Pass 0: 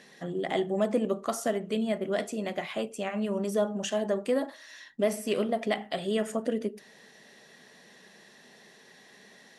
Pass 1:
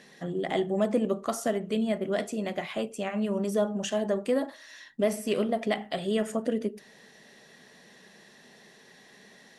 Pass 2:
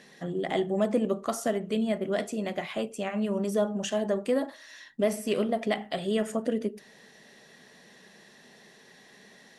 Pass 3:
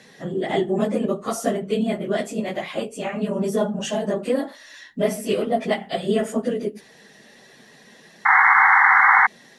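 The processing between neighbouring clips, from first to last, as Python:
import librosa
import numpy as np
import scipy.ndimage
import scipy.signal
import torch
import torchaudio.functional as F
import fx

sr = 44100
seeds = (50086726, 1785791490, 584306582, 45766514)

y1 = fx.low_shelf(x, sr, hz=170.0, db=5.0)
y2 = y1
y3 = fx.phase_scramble(y2, sr, seeds[0], window_ms=50)
y3 = fx.spec_paint(y3, sr, seeds[1], shape='noise', start_s=8.25, length_s=1.02, low_hz=750.0, high_hz=2200.0, level_db=-19.0)
y3 = y3 * 10.0 ** (5.0 / 20.0)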